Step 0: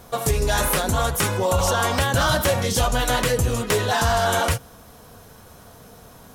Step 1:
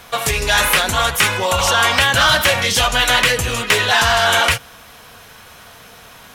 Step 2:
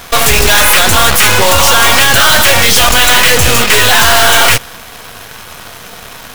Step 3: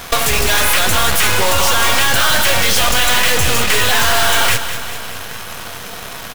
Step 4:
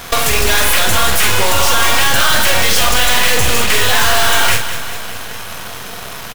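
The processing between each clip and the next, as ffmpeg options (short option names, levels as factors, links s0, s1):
-filter_complex "[0:a]equalizer=f=2500:w=0.76:g=12,acrossover=split=660[s0][s1];[s1]acontrast=36[s2];[s0][s2]amix=inputs=2:normalize=0,volume=0.794"
-af "apsyclip=5.62,aeval=exprs='1.06*(cos(1*acos(clip(val(0)/1.06,-1,1)))-cos(1*PI/2))+0.422*(cos(6*acos(clip(val(0)/1.06,-1,1)))-cos(6*PI/2))':c=same,acrusher=bits=2:mode=log:mix=0:aa=0.000001,volume=0.562"
-filter_complex "[0:a]acompressor=threshold=0.282:ratio=6,asplit=2[s0][s1];[s1]aecho=0:1:203|406|609|812|1015|1218|1421:0.282|0.169|0.101|0.0609|0.0365|0.0219|0.0131[s2];[s0][s2]amix=inputs=2:normalize=0"
-filter_complex "[0:a]asplit=2[s0][s1];[s1]adelay=46,volume=0.473[s2];[s0][s2]amix=inputs=2:normalize=0"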